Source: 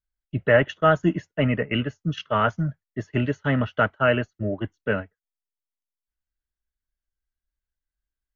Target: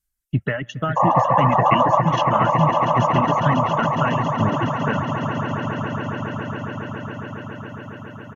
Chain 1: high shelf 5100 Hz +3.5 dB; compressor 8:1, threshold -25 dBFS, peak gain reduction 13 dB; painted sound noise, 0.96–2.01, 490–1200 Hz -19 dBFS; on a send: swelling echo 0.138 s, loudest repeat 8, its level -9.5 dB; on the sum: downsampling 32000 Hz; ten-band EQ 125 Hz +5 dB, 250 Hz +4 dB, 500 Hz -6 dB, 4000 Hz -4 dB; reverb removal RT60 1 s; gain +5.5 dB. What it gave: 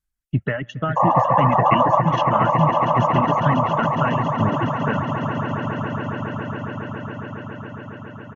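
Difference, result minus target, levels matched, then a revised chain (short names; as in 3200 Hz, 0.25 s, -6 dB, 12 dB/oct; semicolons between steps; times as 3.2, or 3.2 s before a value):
8000 Hz band -6.5 dB
high shelf 5100 Hz +14.5 dB; compressor 8:1, threshold -25 dBFS, peak gain reduction 13.5 dB; painted sound noise, 0.96–2.01, 490–1200 Hz -19 dBFS; on a send: swelling echo 0.138 s, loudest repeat 8, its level -9.5 dB; on the sum: downsampling 32000 Hz; ten-band EQ 125 Hz +5 dB, 250 Hz +4 dB, 500 Hz -6 dB, 4000 Hz -4 dB; reverb removal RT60 1 s; gain +5.5 dB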